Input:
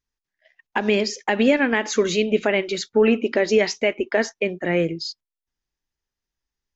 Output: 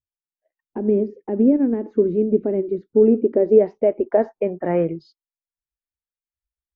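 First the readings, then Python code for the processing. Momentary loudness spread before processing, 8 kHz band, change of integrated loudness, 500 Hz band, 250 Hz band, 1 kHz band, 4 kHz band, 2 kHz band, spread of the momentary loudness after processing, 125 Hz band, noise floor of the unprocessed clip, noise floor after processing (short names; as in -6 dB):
7 LU, n/a, +1.5 dB, +2.5 dB, +3.0 dB, -5.0 dB, under -30 dB, under -20 dB, 10 LU, +1.5 dB, under -85 dBFS, under -85 dBFS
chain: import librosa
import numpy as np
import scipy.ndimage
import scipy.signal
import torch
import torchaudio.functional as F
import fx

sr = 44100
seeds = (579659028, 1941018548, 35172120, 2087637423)

y = fx.noise_reduce_blind(x, sr, reduce_db=21)
y = fx.filter_sweep_lowpass(y, sr, from_hz=350.0, to_hz=1700.0, start_s=2.9, end_s=5.75, q=1.8)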